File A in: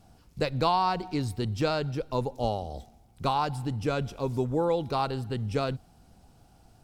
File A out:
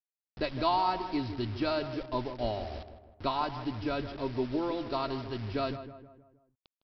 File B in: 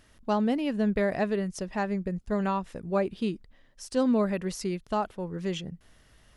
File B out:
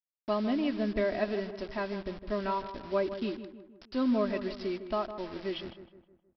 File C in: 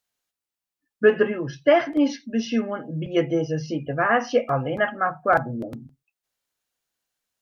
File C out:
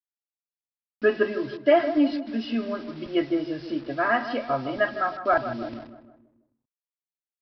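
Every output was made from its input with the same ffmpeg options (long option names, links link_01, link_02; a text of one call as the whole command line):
ffmpeg -i in.wav -filter_complex "[0:a]aecho=1:1:3.1:0.73,aresample=11025,acrusher=bits=6:mix=0:aa=0.000001,aresample=44100,asplit=2[link_01][link_02];[link_02]adelay=157,lowpass=frequency=1800:poles=1,volume=-10.5dB,asplit=2[link_03][link_04];[link_04]adelay=157,lowpass=frequency=1800:poles=1,volume=0.49,asplit=2[link_05][link_06];[link_06]adelay=157,lowpass=frequency=1800:poles=1,volume=0.49,asplit=2[link_07][link_08];[link_08]adelay=157,lowpass=frequency=1800:poles=1,volume=0.49,asplit=2[link_09][link_10];[link_10]adelay=157,lowpass=frequency=1800:poles=1,volume=0.49[link_11];[link_01][link_03][link_05][link_07][link_09][link_11]amix=inputs=6:normalize=0,volume=-5dB" out.wav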